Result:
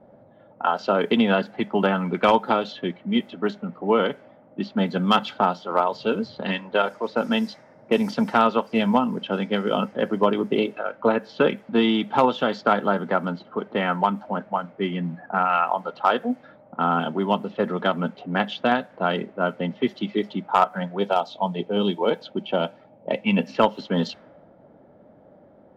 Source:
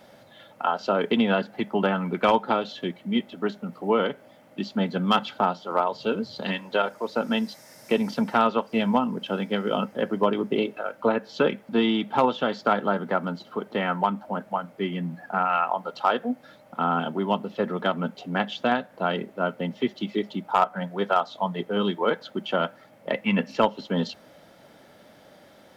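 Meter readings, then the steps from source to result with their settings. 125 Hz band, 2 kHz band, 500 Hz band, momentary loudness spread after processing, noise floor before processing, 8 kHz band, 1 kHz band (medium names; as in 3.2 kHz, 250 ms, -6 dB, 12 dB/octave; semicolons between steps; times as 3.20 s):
+2.5 dB, +2.0 dB, +2.5 dB, 8 LU, -53 dBFS, no reading, +2.5 dB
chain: time-frequency box 20.99–23.47 s, 990–2200 Hz -8 dB; level-controlled noise filter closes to 630 Hz, open at -21 dBFS; trim +2.5 dB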